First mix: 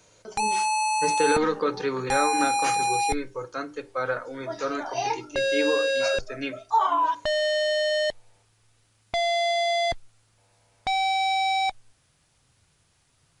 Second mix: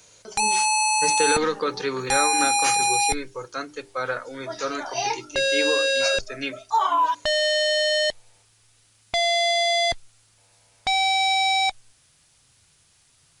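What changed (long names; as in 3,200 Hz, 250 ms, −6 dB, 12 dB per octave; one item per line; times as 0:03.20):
speech: send −10.0 dB
master: add high-shelf EQ 2,200 Hz +9.5 dB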